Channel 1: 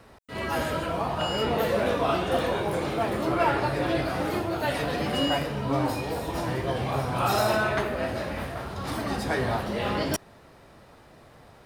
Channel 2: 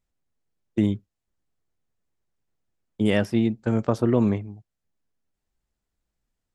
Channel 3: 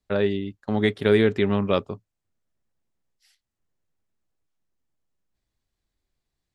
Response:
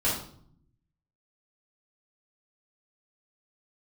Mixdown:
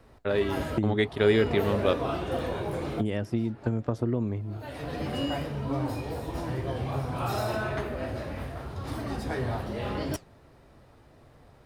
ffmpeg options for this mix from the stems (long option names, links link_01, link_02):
-filter_complex "[0:a]flanger=delay=3.9:depth=7.7:regen=-76:speed=1.4:shape=sinusoidal,volume=-3.5dB[link_01];[1:a]volume=-0.5dB,asplit=2[link_02][link_03];[2:a]adelay=150,volume=-3dB[link_04];[link_03]apad=whole_len=513983[link_05];[link_01][link_05]sidechaincompress=threshold=-34dB:ratio=8:attack=39:release=605[link_06];[link_06][link_02]amix=inputs=2:normalize=0,lowshelf=frequency=360:gain=9.5,acompressor=threshold=-23dB:ratio=8,volume=0dB[link_07];[link_04][link_07]amix=inputs=2:normalize=0,equalizer=frequency=190:width=5.1:gain=-8.5"